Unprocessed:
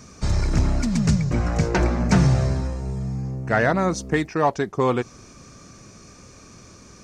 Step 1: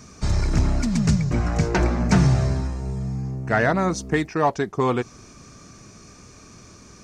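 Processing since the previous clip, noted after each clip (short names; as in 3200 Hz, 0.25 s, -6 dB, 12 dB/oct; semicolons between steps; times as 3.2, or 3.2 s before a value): notch 530 Hz, Q 12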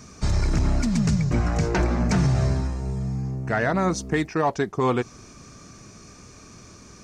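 limiter -12.5 dBFS, peak gain reduction 6.5 dB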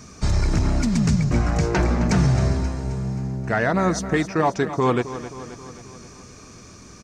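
feedback echo 0.265 s, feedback 58%, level -13 dB; gain +2 dB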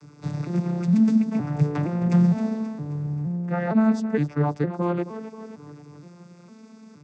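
arpeggiated vocoder minor triad, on D3, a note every 0.463 s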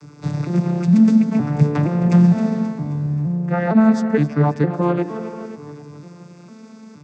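reverb, pre-delay 0.148 s, DRR 12 dB; gain +6 dB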